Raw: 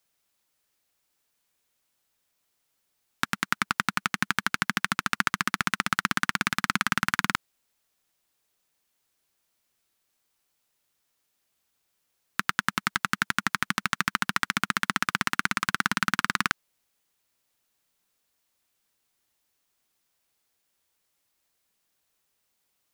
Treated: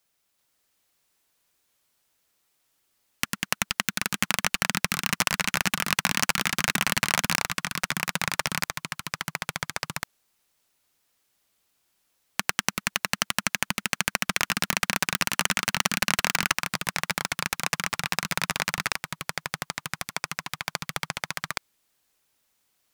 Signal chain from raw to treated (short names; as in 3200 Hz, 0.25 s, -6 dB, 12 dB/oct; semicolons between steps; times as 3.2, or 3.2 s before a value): self-modulated delay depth 0.78 ms; echoes that change speed 0.385 s, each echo -2 st, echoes 2; gain +1.5 dB